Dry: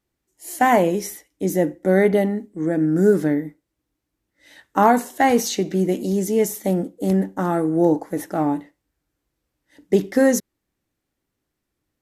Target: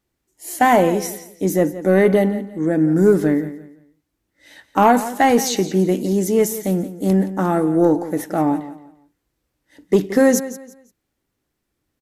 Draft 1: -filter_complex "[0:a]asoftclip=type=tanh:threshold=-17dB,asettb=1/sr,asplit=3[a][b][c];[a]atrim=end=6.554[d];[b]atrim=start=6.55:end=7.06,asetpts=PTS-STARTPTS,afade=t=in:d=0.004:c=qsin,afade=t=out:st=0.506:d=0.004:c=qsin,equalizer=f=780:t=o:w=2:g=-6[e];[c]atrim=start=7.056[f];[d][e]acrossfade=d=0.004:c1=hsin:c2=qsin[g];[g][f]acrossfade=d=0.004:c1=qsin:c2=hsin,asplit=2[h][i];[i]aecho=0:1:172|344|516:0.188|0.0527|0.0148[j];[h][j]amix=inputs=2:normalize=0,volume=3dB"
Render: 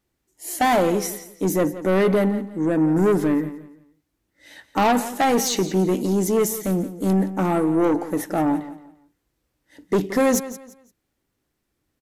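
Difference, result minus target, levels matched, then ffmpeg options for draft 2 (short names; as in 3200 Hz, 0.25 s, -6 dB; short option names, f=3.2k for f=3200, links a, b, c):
soft clip: distortion +14 dB
-filter_complex "[0:a]asoftclip=type=tanh:threshold=-5.5dB,asettb=1/sr,asplit=3[a][b][c];[a]atrim=end=6.554[d];[b]atrim=start=6.55:end=7.06,asetpts=PTS-STARTPTS,afade=t=in:d=0.004:c=qsin,afade=t=out:st=0.506:d=0.004:c=qsin,equalizer=f=780:t=o:w=2:g=-6[e];[c]atrim=start=7.056[f];[d][e]acrossfade=d=0.004:c1=hsin:c2=qsin[g];[g][f]acrossfade=d=0.004:c1=qsin:c2=hsin,asplit=2[h][i];[i]aecho=0:1:172|344|516:0.188|0.0527|0.0148[j];[h][j]amix=inputs=2:normalize=0,volume=3dB"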